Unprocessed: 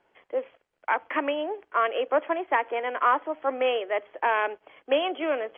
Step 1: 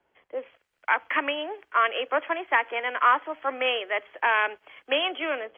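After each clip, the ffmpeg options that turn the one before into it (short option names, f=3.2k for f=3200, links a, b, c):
-filter_complex "[0:a]acrossover=split=140|290|1200[a][b][c][d];[d]dynaudnorm=f=330:g=3:m=11.5dB[e];[a][b][c][e]amix=inputs=4:normalize=0,equalizer=f=63:w=0.52:g=6,volume=-5dB"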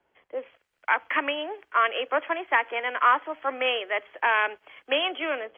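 -af anull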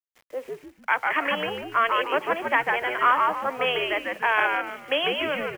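-filter_complex "[0:a]acrusher=bits=8:mix=0:aa=0.000001,asplit=2[a][b];[b]asplit=4[c][d][e][f];[c]adelay=148,afreqshift=-95,volume=-3dB[g];[d]adelay=296,afreqshift=-190,volume=-12.9dB[h];[e]adelay=444,afreqshift=-285,volume=-22.8dB[i];[f]adelay=592,afreqshift=-380,volume=-32.7dB[j];[g][h][i][j]amix=inputs=4:normalize=0[k];[a][k]amix=inputs=2:normalize=0"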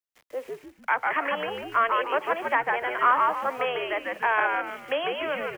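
-filter_complex "[0:a]acrossover=split=400|590|1900[a][b][c][d];[a]alimiter=level_in=13dB:limit=-24dB:level=0:latency=1:release=280,volume=-13dB[e];[d]acompressor=threshold=-38dB:ratio=6[f];[e][b][c][f]amix=inputs=4:normalize=0"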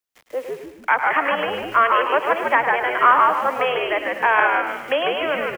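-af "aecho=1:1:105|210|315|420:0.316|0.123|0.0481|0.0188,volume=6.5dB"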